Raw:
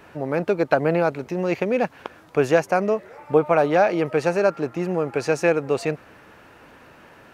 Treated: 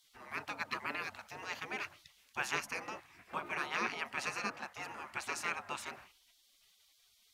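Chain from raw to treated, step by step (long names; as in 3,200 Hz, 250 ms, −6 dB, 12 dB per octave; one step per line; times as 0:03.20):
hum removal 66.9 Hz, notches 7
frequency shifter +14 Hz
gate on every frequency bin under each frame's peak −20 dB weak
level −3.5 dB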